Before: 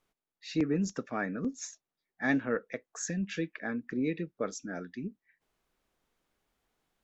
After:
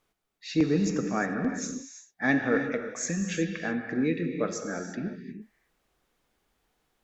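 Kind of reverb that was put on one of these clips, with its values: gated-style reverb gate 380 ms flat, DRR 4.5 dB; trim +4 dB

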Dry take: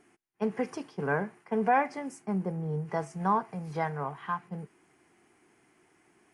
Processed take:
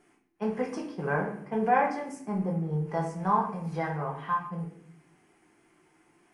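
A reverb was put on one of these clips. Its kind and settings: simulated room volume 110 m³, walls mixed, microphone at 0.82 m; trim -2.5 dB

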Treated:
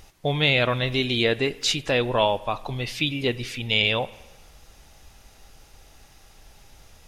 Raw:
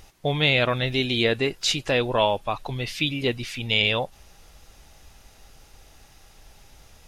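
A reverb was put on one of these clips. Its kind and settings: spring tank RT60 1.1 s, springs 41/50/55 ms, chirp 80 ms, DRR 17.5 dB

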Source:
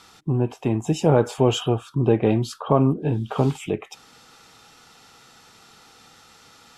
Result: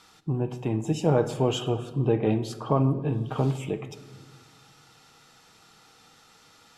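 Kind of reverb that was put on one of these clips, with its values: simulated room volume 1500 m³, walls mixed, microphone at 0.52 m; trim -5.5 dB

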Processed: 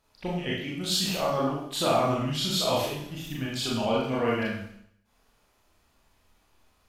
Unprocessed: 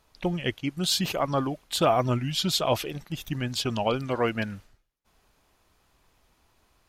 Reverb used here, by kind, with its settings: Schroeder reverb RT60 0.69 s, combs from 27 ms, DRR -5.5 dB; trim -7 dB

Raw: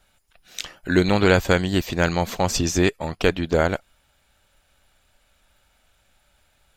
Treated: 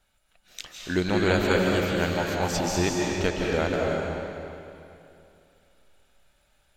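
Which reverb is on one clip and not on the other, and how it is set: algorithmic reverb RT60 2.7 s, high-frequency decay 0.9×, pre-delay 120 ms, DRR -2 dB; trim -7.5 dB

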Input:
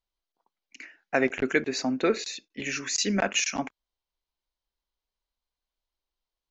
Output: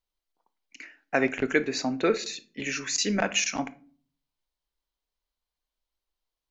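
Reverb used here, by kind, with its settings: simulated room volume 370 m³, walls furnished, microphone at 0.45 m

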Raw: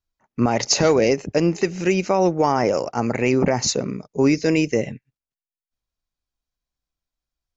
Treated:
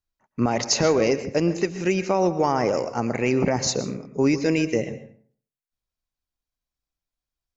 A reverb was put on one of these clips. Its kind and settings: plate-style reverb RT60 0.52 s, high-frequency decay 0.6×, pre-delay 105 ms, DRR 12 dB; trim -3 dB

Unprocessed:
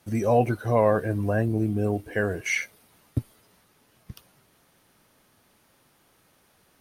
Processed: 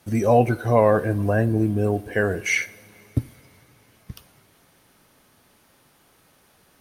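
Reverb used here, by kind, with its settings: two-slope reverb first 0.49 s, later 4.4 s, from -19 dB, DRR 15 dB; trim +4 dB

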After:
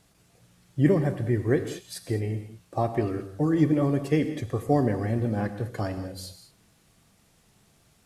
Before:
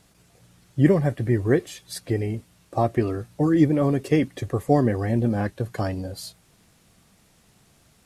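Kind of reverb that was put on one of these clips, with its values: gated-style reverb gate 240 ms flat, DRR 8.5 dB; trim -4 dB

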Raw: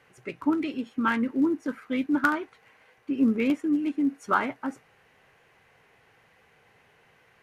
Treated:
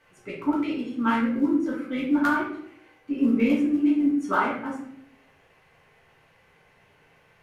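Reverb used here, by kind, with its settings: simulated room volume 110 m³, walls mixed, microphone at 1.6 m; trim -5 dB

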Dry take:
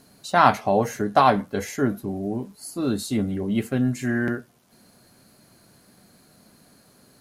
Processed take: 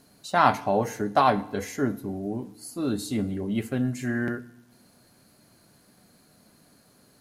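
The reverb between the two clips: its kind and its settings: FDN reverb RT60 0.9 s, low-frequency decay 1.4×, high-frequency decay 0.95×, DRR 16 dB; trim -3.5 dB

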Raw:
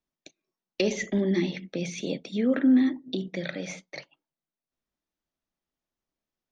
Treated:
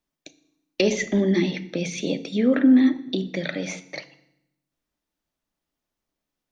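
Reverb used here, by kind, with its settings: FDN reverb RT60 0.8 s, low-frequency decay 1.5×, high-frequency decay 0.9×, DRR 12 dB; trim +5 dB

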